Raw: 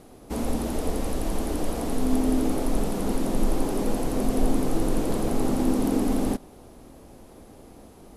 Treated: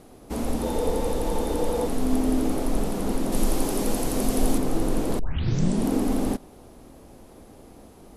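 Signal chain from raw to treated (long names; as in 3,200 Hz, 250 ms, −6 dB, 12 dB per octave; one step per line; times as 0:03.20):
0:00.62–0:01.87: hollow resonant body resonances 490/880/3,600 Hz, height 15 dB, ringing for 85 ms
0:03.32–0:04.58: high-shelf EQ 2,900 Hz +8.5 dB
0:05.19: tape start 0.70 s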